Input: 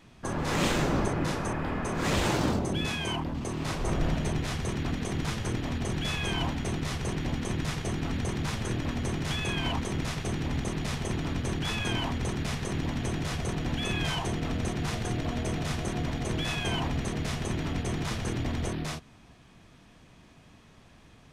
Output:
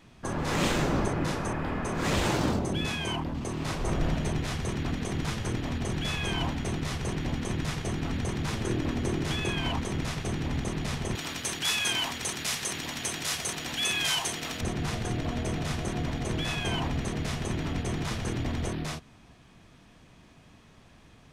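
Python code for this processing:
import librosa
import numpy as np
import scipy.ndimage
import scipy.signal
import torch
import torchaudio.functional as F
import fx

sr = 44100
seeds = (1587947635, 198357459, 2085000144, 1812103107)

y = fx.peak_eq(x, sr, hz=350.0, db=6.0, octaves=0.77, at=(8.49, 9.5))
y = fx.tilt_eq(y, sr, slope=4.0, at=(11.15, 14.61))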